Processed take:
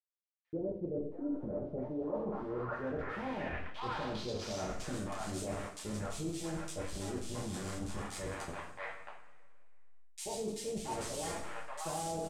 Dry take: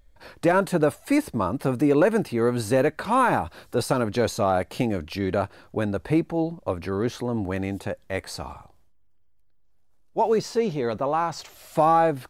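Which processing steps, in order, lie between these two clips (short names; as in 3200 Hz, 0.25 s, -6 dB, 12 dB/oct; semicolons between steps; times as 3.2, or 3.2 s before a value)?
level-crossing sampler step -22 dBFS; high shelf 8300 Hz +4 dB; three bands offset in time highs, lows, mids 80/670 ms, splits 730/2400 Hz; two-slope reverb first 0.5 s, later 2 s, from -18 dB, DRR -3 dB; low-pass sweep 410 Hz -> 8200 Hz, 1.32–4.99; reverse; compressor 4:1, threshold -34 dBFS, peak gain reduction 22 dB; reverse; gain -4.5 dB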